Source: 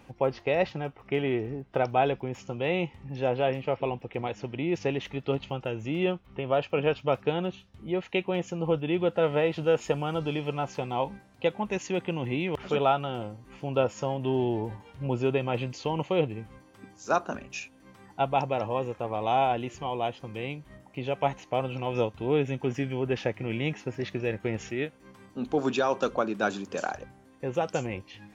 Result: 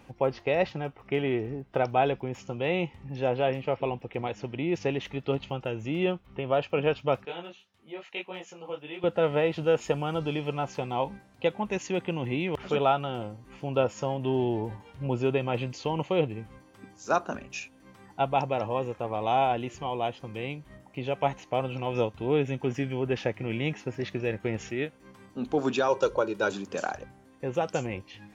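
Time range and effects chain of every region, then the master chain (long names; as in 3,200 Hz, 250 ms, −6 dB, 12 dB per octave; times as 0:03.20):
0:07.25–0:09.04: high-pass filter 930 Hz 6 dB per octave + micro pitch shift up and down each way 36 cents
0:25.88–0:26.52: parametric band 1,700 Hz −3.5 dB 1.9 octaves + comb filter 2.1 ms, depth 72%
whole clip: no processing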